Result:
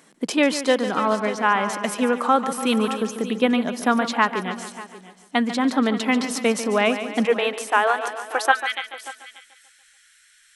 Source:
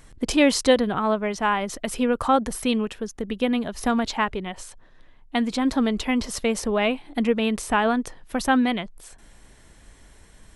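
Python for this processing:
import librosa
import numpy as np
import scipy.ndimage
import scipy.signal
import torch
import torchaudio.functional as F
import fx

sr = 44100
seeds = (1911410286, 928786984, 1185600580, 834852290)

y = fx.ellip_highpass(x, sr, hz=fx.steps((0.0, 170.0), (7.24, 330.0), (8.51, 1400.0)), order=4, stop_db=40)
y = y + 10.0 ** (-16.0 / 20.0) * np.pad(y, (int(588 * sr / 1000.0), 0))[:len(y)]
y = fx.dynamic_eq(y, sr, hz=1400.0, q=0.93, threshold_db=-36.0, ratio=4.0, max_db=6)
y = fx.echo_feedback(y, sr, ms=144, feedback_pct=52, wet_db=-11.5)
y = fx.rider(y, sr, range_db=4, speed_s=0.5)
y = y * 10.0 ** (1.0 / 20.0)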